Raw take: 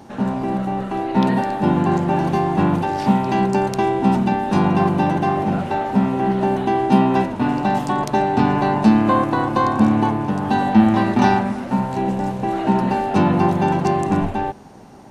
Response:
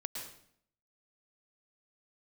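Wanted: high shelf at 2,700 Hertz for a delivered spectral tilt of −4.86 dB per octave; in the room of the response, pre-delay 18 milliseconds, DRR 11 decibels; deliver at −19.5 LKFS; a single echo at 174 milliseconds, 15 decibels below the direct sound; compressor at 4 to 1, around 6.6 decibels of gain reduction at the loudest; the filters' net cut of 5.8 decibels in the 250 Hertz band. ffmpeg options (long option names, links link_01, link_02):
-filter_complex "[0:a]equalizer=frequency=250:width_type=o:gain=-8,highshelf=frequency=2700:gain=7.5,acompressor=threshold=-21dB:ratio=4,aecho=1:1:174:0.178,asplit=2[link_01][link_02];[1:a]atrim=start_sample=2205,adelay=18[link_03];[link_02][link_03]afir=irnorm=-1:irlink=0,volume=-11dB[link_04];[link_01][link_04]amix=inputs=2:normalize=0,volume=4.5dB"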